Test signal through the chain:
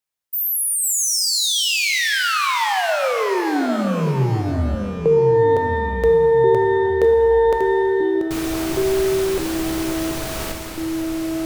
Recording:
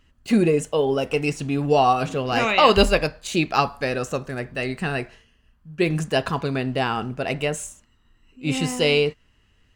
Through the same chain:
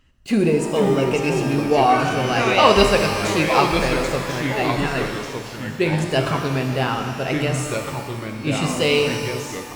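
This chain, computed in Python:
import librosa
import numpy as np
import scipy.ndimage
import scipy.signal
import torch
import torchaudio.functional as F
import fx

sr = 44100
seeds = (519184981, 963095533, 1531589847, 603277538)

y = fx.echo_pitch(x, sr, ms=427, semitones=-3, count=2, db_per_echo=-6.0)
y = fx.rev_shimmer(y, sr, seeds[0], rt60_s=1.8, semitones=12, shimmer_db=-8, drr_db=4.5)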